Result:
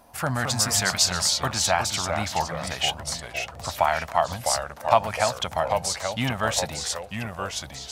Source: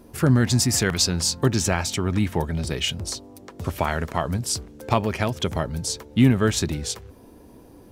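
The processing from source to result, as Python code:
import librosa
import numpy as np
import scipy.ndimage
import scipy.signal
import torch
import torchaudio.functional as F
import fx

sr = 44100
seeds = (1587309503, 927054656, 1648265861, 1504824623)

y = fx.low_shelf_res(x, sr, hz=530.0, db=-10.0, q=3.0)
y = fx.echo_pitch(y, sr, ms=189, semitones=-2, count=2, db_per_echo=-6.0)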